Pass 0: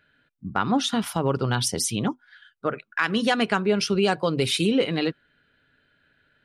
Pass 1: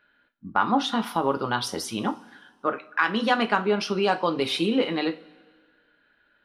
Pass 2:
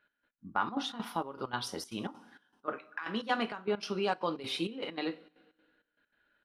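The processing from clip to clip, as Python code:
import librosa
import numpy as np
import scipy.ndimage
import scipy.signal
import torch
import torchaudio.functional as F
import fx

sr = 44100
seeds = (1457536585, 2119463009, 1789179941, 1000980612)

y1 = fx.graphic_eq(x, sr, hz=(125, 250, 1000, 4000, 8000), db=(-12, 4, 9, 3, -10))
y1 = fx.rev_double_slope(y1, sr, seeds[0], early_s=0.26, late_s=1.7, knee_db=-21, drr_db=6.0)
y1 = F.gain(torch.from_numpy(y1), -4.0).numpy()
y2 = fx.step_gate(y1, sr, bpm=196, pattern='x..x.xxxx.xx.xx', floor_db=-12.0, edge_ms=4.5)
y2 = F.gain(torch.from_numpy(y2), -8.5).numpy()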